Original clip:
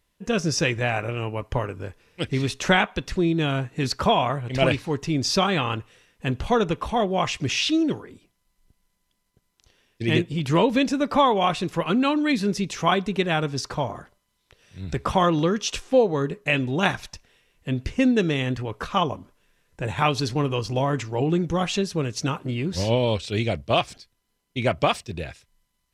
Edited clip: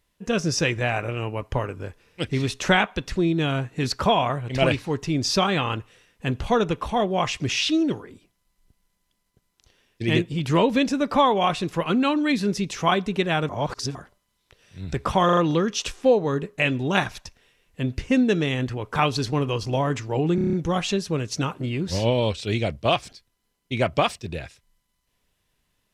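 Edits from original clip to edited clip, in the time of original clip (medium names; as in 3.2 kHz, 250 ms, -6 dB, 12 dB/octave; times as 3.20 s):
13.49–13.95 s: reverse
15.25 s: stutter 0.04 s, 4 plays
18.84–19.99 s: delete
21.38 s: stutter 0.03 s, 7 plays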